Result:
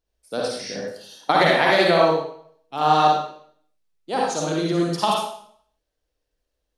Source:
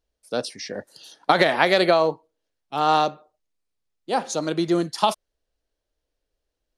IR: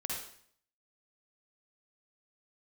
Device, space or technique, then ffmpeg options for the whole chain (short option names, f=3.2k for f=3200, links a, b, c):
bathroom: -filter_complex "[1:a]atrim=start_sample=2205[a];[0:a][a]afir=irnorm=-1:irlink=0"